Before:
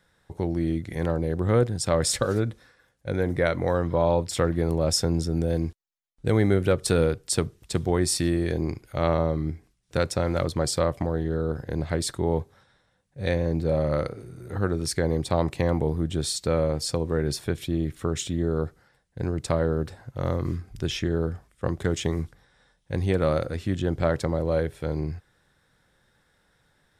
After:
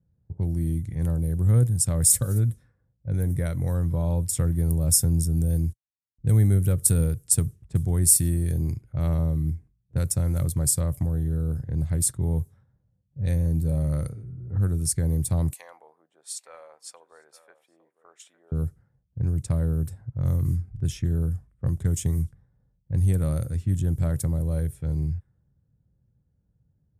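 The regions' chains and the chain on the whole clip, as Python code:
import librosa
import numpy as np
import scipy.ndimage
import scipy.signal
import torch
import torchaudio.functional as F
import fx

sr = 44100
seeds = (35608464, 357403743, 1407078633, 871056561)

y = fx.chain(x, sr, fx.highpass(hz=730.0, slope=24),
    fx.echo_single(ms=857, db=-13.5), at=(15.53, 18.52))
y = scipy.signal.sosfilt(scipy.signal.butter(2, 57.0, 'highpass', fs=sr, output='sos'), y)
y = fx.env_lowpass(y, sr, base_hz=510.0, full_db=-22.0)
y = fx.curve_eq(y, sr, hz=(120.0, 360.0, 810.0, 4200.0, 11000.0), db=(0, -18, -21, -19, 11))
y = y * librosa.db_to_amplitude(7.0)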